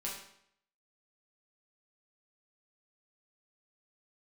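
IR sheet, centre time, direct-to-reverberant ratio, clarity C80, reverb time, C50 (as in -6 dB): 42 ms, -5.5 dB, 7.0 dB, 0.70 s, 3.5 dB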